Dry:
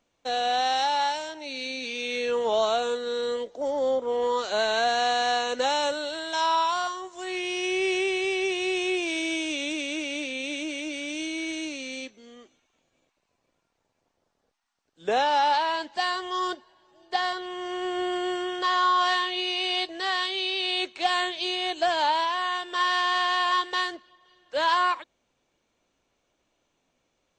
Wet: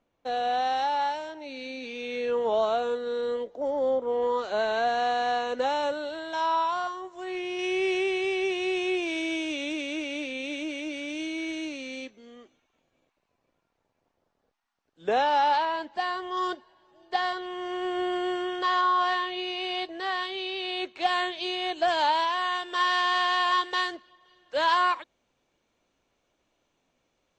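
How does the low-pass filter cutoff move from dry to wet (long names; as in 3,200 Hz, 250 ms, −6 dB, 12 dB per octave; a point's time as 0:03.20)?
low-pass filter 6 dB per octave
1,400 Hz
from 0:07.59 2,700 Hz
from 0:15.65 1,500 Hz
from 0:16.37 3,100 Hz
from 0:18.81 1,700 Hz
from 0:20.97 2,900 Hz
from 0:21.88 6,700 Hz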